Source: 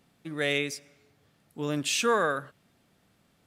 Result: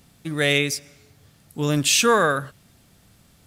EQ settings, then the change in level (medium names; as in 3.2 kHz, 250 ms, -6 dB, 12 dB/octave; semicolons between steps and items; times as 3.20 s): dynamic bell 7.6 kHz, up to -4 dB, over -45 dBFS, Q 0.78; tone controls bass +12 dB, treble +8 dB; peaking EQ 180 Hz -6.5 dB 2 oct; +7.5 dB